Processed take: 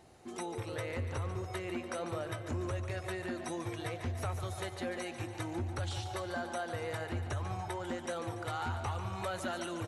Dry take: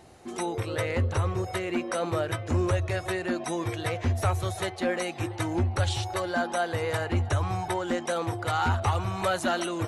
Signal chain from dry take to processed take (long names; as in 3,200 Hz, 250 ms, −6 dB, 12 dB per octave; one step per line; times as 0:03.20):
downward compressor 2 to 1, threshold −30 dBFS, peak gain reduction 5.5 dB
on a send: repeating echo 144 ms, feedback 56%, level −10 dB
on the sum: level −7 dB